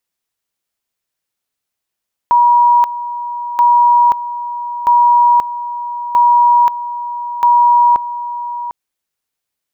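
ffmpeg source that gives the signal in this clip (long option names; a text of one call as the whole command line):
ffmpeg -f lavfi -i "aevalsrc='pow(10,(-6-13.5*gte(mod(t,1.28),0.53))/20)*sin(2*PI*960*t)':duration=6.4:sample_rate=44100" out.wav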